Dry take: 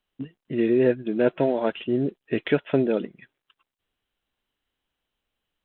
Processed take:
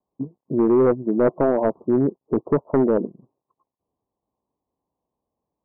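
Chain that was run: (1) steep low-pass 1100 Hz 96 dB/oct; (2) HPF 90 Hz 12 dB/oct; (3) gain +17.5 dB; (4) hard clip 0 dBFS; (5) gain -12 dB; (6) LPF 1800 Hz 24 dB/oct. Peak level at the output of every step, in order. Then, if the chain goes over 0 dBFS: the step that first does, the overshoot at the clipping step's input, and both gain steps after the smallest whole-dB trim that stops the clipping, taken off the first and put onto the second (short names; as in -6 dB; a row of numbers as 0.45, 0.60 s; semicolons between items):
-8.5, -8.0, +9.5, 0.0, -12.0, -11.0 dBFS; step 3, 9.5 dB; step 3 +7.5 dB, step 5 -2 dB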